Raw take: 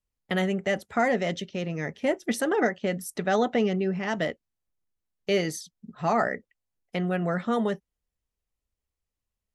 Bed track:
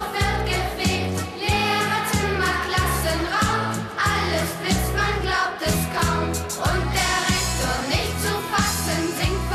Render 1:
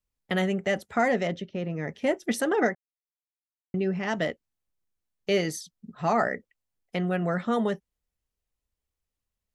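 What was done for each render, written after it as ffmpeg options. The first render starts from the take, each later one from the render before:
-filter_complex "[0:a]asettb=1/sr,asplit=3[s0][s1][s2];[s0]atrim=end=1.274[s3];[s1]atrim=start=1.27:end=1.88,asetpts=PTS-STARTPTS,afade=t=in:d=0.004:c=qsin,afade=t=out:st=0.606:d=0.004:c=qsin,lowpass=f=1500:p=1[s4];[s2]atrim=start=1.876[s5];[s3][s4]acrossfade=d=0.004:c1=hsin:c2=qsin[s6];[s6][s5]acrossfade=d=0.004:c1=qsin:c2=hsin,asplit=3[s7][s8][s9];[s7]atrim=end=2.75,asetpts=PTS-STARTPTS,afade=t=out:st=2.746:d=0.004:c=hsin[s10];[s8]atrim=start=2.75:end=3.74,asetpts=PTS-STARTPTS,volume=0[s11];[s9]atrim=start=3.74,asetpts=PTS-STARTPTS,afade=t=in:d=0.004:c=hsin[s12];[s10][s11][s12]concat=n=3:v=0:a=1"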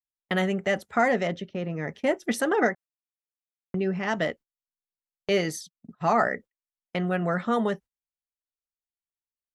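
-af "agate=range=0.0501:threshold=0.00708:ratio=16:detection=peak,equalizer=f=1200:t=o:w=1.4:g=3.5"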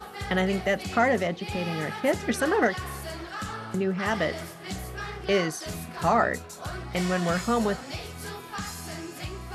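-filter_complex "[1:a]volume=0.2[s0];[0:a][s0]amix=inputs=2:normalize=0"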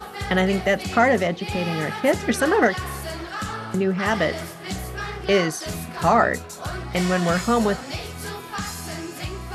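-af "volume=1.78"

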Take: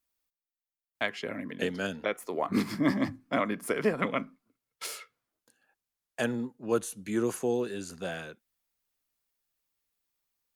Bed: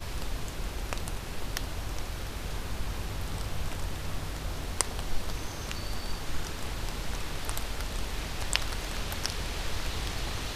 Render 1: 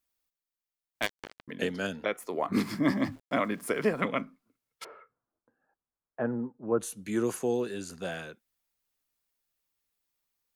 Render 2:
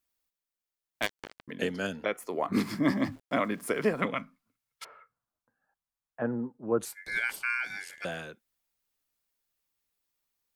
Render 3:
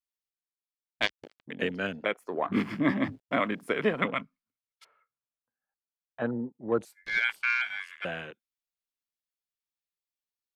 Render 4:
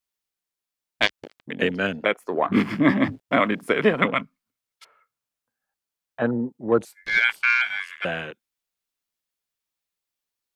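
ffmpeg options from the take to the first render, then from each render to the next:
-filter_complex "[0:a]asettb=1/sr,asplit=3[s0][s1][s2];[s0]atrim=end=1.024[s3];[s1]atrim=start=1.02:end=1.48,asetpts=PTS-STARTPTS,afade=t=in:d=0.004:c=qsin,afade=t=out:st=0.456:d=0.004:c=qsin,acrusher=bits=3:mix=0:aa=0.5[s4];[s2]atrim=start=1.476[s5];[s3][s4]acrossfade=d=0.004:c1=hsin:c2=qsin[s6];[s6][s5]acrossfade=d=0.004:c1=qsin:c2=hsin,asettb=1/sr,asplit=3[s7][s8][s9];[s7]atrim=end=2.534[s10];[s8]atrim=start=2.53:end=4.05,asetpts=PTS-STARTPTS,afade=t=in:d=0.004:c=qsin,afade=t=out:st=1.516:d=0.004:c=qsin,aeval=exprs='val(0)*gte(abs(val(0)),0.00251)':c=same[s11];[s9]atrim=start=4.046[s12];[s10][s11]acrossfade=d=0.004:c1=hsin:c2=qsin[s13];[s13][s12]acrossfade=d=0.004:c1=qsin:c2=hsin,asplit=3[s14][s15][s16];[s14]afade=t=out:st=4.83:d=0.02[s17];[s15]lowpass=f=1400:w=0.5412,lowpass=f=1400:w=1.3066,afade=t=in:st=4.83:d=0.02,afade=t=out:st=6.79:d=0.02[s18];[s16]afade=t=in:st=6.79:d=0.02[s19];[s17][s18][s19]amix=inputs=3:normalize=0"
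-filter_complex "[0:a]asettb=1/sr,asplit=3[s0][s1][s2];[s0]atrim=end=1.624[s3];[s1]atrim=start=1.62:end=2.43,asetpts=PTS-STARTPTS,afade=t=in:d=0.004:c=qsin,afade=t=out:st=0.806:d=0.004:c=qsin,bandreject=f=3700:w=12[s4];[s2]atrim=start=2.426[s5];[s3][s4]acrossfade=d=0.004:c1=hsin:c2=qsin[s6];[s6][s5]acrossfade=d=0.004:c1=qsin:c2=hsin,asettb=1/sr,asplit=3[s7][s8][s9];[s7]atrim=end=4.144[s10];[s8]atrim=start=4.14:end=6.22,asetpts=PTS-STARTPTS,afade=t=in:d=0.004:c=qsin,afade=t=out:st=2.076:d=0.004:c=qsin,equalizer=f=370:t=o:w=1.2:g=-13[s11];[s9]atrim=start=6.216[s12];[s10][s11]acrossfade=d=0.004:c1=hsin:c2=qsin[s13];[s13][s12]acrossfade=d=0.004:c1=qsin:c2=hsin,asettb=1/sr,asplit=3[s14][s15][s16];[s14]atrim=end=6.854[s17];[s15]atrim=start=6.85:end=8.05,asetpts=PTS-STARTPTS,afade=t=in:d=0.004:c=qsin,afade=t=out:st=1.196:d=0.004:c=qsin,aeval=exprs='val(0)*sin(2*PI*1900*n/s)':c=same[s18];[s16]atrim=start=8.046[s19];[s17][s18]acrossfade=d=0.004:c1=hsin:c2=qsin[s20];[s20][s19]acrossfade=d=0.004:c1=qsin:c2=hsin"
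-af "afwtdn=0.00794,equalizer=f=3500:w=0.63:g=6"
-af "volume=2.37,alimiter=limit=0.891:level=0:latency=1"

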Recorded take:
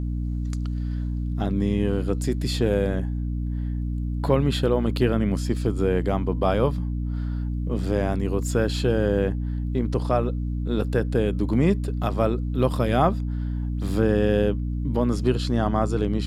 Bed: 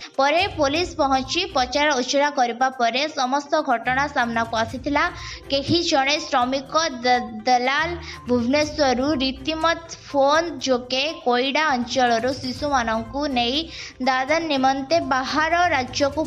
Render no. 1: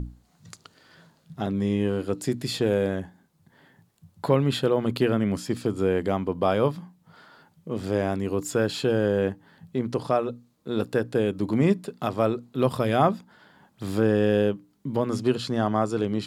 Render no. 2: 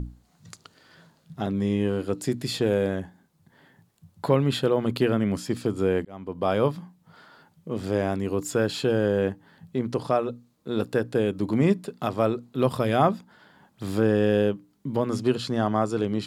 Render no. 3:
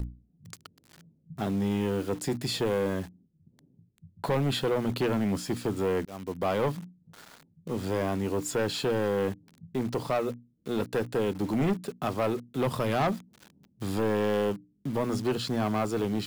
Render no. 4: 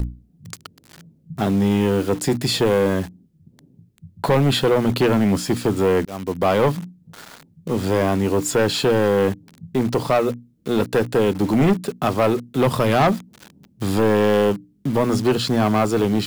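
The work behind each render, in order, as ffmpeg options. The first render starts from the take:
-af "bandreject=f=60:t=h:w=6,bandreject=f=120:t=h:w=6,bandreject=f=180:t=h:w=6,bandreject=f=240:t=h:w=6,bandreject=f=300:t=h:w=6"
-filter_complex "[0:a]asplit=2[s0][s1];[s0]atrim=end=6.05,asetpts=PTS-STARTPTS,afade=t=out:st=6.046:d=0.004:c=hsin[s2];[s1]atrim=start=6.05,asetpts=PTS-STARTPTS,afade=t=in:d=0.52[s3];[s2][s3]concat=n=2:v=0:a=1"
-filter_complex "[0:a]acrossover=split=360[s0][s1];[s1]acrusher=bits=7:mix=0:aa=0.000001[s2];[s0][s2]amix=inputs=2:normalize=0,asoftclip=type=tanh:threshold=0.0841"
-af "volume=3.16"

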